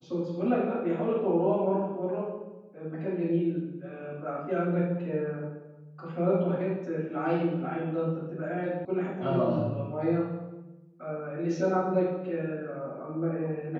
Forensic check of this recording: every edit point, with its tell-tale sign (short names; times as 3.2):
8.85 sound cut off